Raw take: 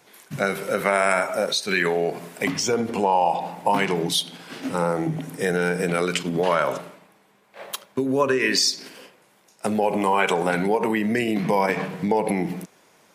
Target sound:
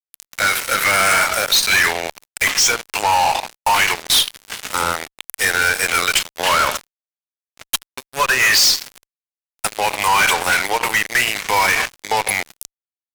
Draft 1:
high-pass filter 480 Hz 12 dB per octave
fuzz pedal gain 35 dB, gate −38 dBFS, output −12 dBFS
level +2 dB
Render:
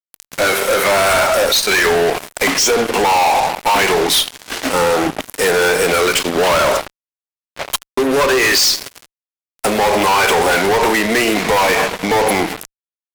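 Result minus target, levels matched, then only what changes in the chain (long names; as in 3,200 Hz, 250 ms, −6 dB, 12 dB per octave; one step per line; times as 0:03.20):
500 Hz band +10.5 dB
change: high-pass filter 1,500 Hz 12 dB per octave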